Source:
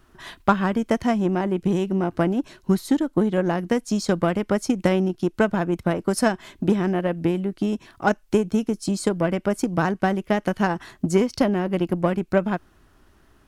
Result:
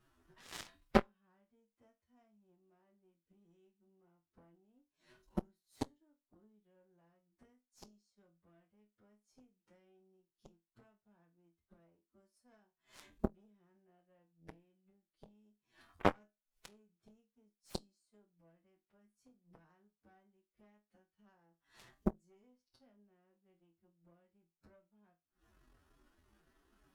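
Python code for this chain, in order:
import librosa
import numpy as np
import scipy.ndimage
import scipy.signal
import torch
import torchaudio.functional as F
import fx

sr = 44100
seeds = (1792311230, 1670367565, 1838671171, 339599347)

p1 = fx.rider(x, sr, range_db=10, speed_s=2.0)
p2 = fx.gate_flip(p1, sr, shuts_db=-20.0, range_db=-36)
p3 = fx.stretch_vocoder(p2, sr, factor=2.0)
p4 = p3 + fx.room_flutter(p3, sr, wall_m=4.1, rt60_s=0.22, dry=0)
p5 = fx.cheby_harmonics(p4, sr, harmonics=(2, 7), levels_db=(-8, -16), full_scale_db=-18.5)
y = p5 * librosa.db_to_amplitude(5.5)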